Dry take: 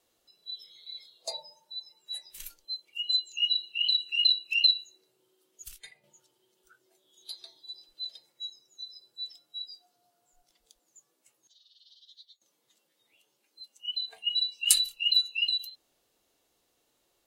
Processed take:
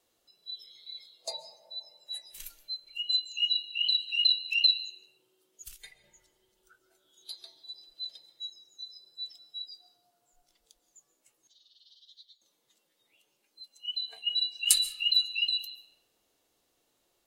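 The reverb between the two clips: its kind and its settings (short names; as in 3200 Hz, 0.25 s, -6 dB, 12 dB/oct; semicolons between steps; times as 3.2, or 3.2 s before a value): digital reverb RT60 2.5 s, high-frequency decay 0.25×, pre-delay 95 ms, DRR 12.5 dB; gain -1 dB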